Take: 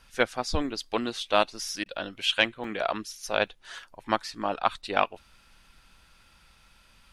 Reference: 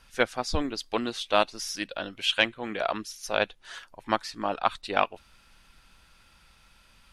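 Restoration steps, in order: interpolate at 2.64/3.47 s, 3.4 ms; interpolate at 1.84 s, 17 ms

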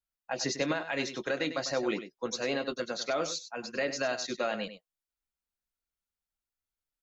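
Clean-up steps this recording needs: inverse comb 98 ms -11.5 dB

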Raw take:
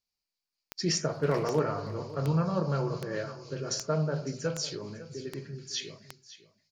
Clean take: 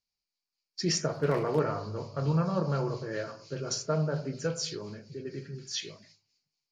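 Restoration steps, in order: de-click; inverse comb 554 ms -16 dB

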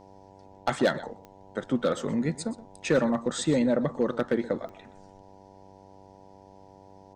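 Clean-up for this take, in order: clip repair -15.5 dBFS; de-click; de-hum 96.9 Hz, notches 10; inverse comb 124 ms -17.5 dB

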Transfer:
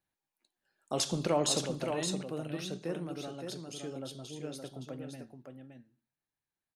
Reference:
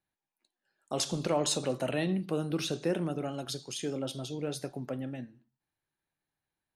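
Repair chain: inverse comb 568 ms -6 dB; trim 0 dB, from 1.66 s +7 dB

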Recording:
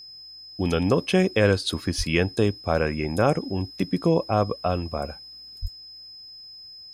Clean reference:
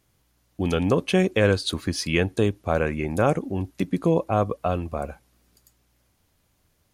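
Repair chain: band-stop 5.1 kHz, Q 30; de-plosive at 1.97/5.61 s

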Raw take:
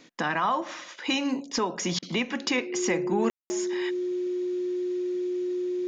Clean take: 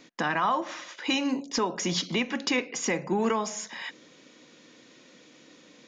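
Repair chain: band-stop 360 Hz, Q 30; room tone fill 3.30–3.50 s; interpolate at 1.99 s, 33 ms

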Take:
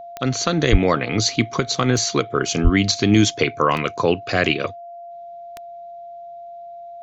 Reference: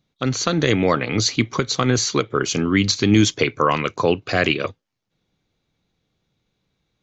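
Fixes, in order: de-click; band-stop 690 Hz, Q 30; 0.71–0.83 s: high-pass 140 Hz 24 dB/octave; 2.63–2.75 s: high-pass 140 Hz 24 dB/octave

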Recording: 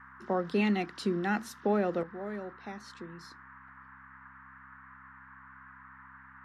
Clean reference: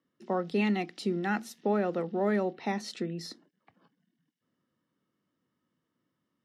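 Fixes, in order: de-hum 65.7 Hz, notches 4; noise print and reduce 28 dB; trim 0 dB, from 2.03 s +11 dB

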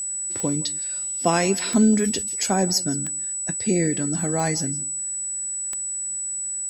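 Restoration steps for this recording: de-click; band-stop 7.9 kHz, Q 30; inverse comb 168 ms -21 dB

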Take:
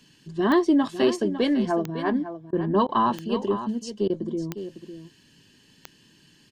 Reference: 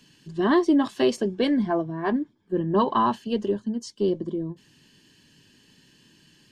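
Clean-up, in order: de-click; interpolate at 2.51/2.87/4.08 s, 17 ms; inverse comb 553 ms -11.5 dB

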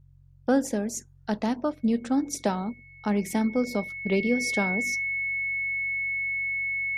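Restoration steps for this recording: de-hum 45.4 Hz, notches 3; band-stop 2.2 kHz, Q 30

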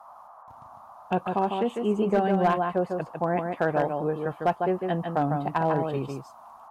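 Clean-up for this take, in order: clip repair -15 dBFS; noise print and reduce 24 dB; inverse comb 151 ms -5 dB

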